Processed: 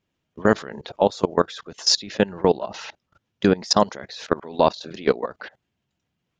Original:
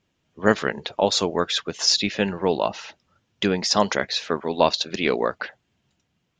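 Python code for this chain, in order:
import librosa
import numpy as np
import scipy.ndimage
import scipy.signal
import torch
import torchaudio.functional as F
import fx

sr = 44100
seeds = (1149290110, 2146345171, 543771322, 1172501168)

y = fx.dynamic_eq(x, sr, hz=2500.0, q=1.5, threshold_db=-39.0, ratio=4.0, max_db=-7)
y = fx.level_steps(y, sr, step_db=21)
y = fx.high_shelf(y, sr, hz=5100.0, db=-4.0)
y = y * 10.0 ** (6.5 / 20.0)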